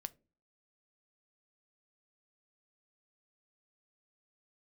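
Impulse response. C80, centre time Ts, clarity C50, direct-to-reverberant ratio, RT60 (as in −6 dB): 29.5 dB, 2 ms, 24.0 dB, 13.0 dB, 0.35 s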